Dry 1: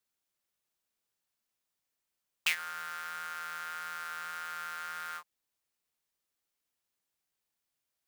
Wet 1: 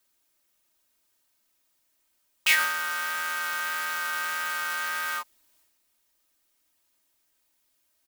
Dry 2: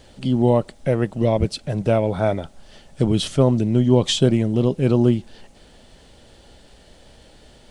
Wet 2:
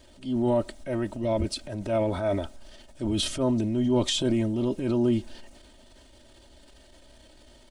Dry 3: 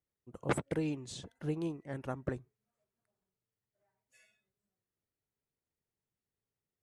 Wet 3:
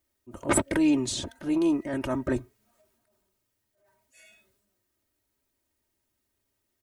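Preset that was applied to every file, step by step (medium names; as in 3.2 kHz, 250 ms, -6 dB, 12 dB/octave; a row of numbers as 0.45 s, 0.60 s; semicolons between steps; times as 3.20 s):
treble shelf 9.9 kHz +4.5 dB; comb 3.2 ms, depth 81%; transient shaper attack -7 dB, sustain +6 dB; normalise loudness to -27 LUFS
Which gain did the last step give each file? +9.0 dB, -8.5 dB, +10.5 dB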